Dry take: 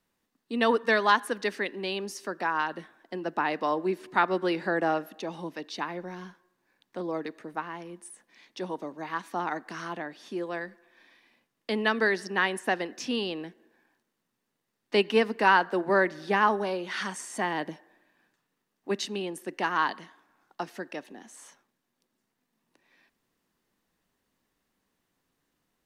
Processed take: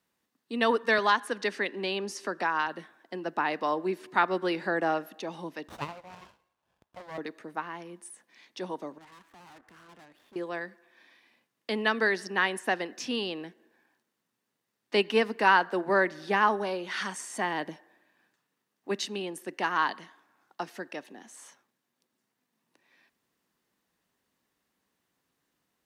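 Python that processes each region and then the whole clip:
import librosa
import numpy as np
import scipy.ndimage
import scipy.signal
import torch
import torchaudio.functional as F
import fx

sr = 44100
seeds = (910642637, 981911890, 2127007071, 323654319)

y = fx.chain(x, sr, fx.lowpass(hz=10000.0, slope=12),
    fx.band_squash(depth_pct=40), at=(0.98, 2.67))
y = fx.chain(y, sr, fx.highpass(hz=640.0, slope=24),
    fx.running_max(window=17), at=(5.68, 7.18))
y = fx.chain(y, sr, fx.median_filter(points=9),
    fx.level_steps(step_db=12),
    fx.tube_stage(drive_db=50.0, bias=0.75), at=(8.98, 10.36))
y = scipy.signal.sosfilt(scipy.signal.butter(2, 60.0, 'highpass', fs=sr, output='sos'), y)
y = fx.low_shelf(y, sr, hz=490.0, db=-3.0)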